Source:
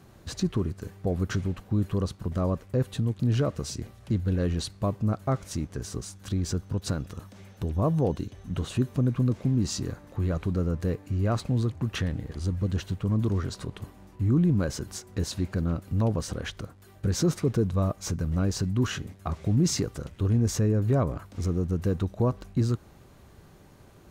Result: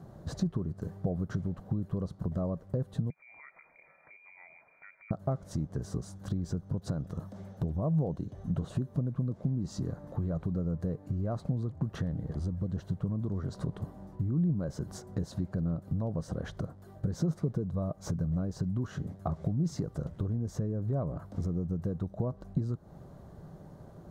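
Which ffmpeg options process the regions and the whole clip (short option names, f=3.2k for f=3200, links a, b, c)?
-filter_complex "[0:a]asettb=1/sr,asplit=3[a][b][c];[a]atrim=end=3.104[d];[b]atrim=start=3.1:end=5.11,asetpts=PTS-STARTPTS,afade=t=in:d=0.004:c=qsin,afade=t=out:st=2.006:d=0.004:c=qsin,highpass=f=65:w=0.5412,highpass=f=65:w=1.3066,acompressor=threshold=-41dB:ratio=4:attack=3.2:release=140:knee=1:detection=peak,lowpass=f=2.1k:t=q:w=0.5098,lowpass=f=2.1k:t=q:w=0.6013,lowpass=f=2.1k:t=q:w=0.9,lowpass=f=2.1k:t=q:w=2.563,afreqshift=-2500[e];[c]atrim=start=5.106[f];[d][e]acrossfade=d=0.004:c1=hsin:c2=qsin[g];[g][f]acrossfade=d=0.004:c1=qsin:c2=hsin,highshelf=f=2.9k:g=-10.5,acompressor=threshold=-33dB:ratio=6,equalizer=f=160:t=o:w=0.67:g=9,equalizer=f=630:t=o:w=0.67:g=7,equalizer=f=2.5k:t=o:w=0.67:g=-12"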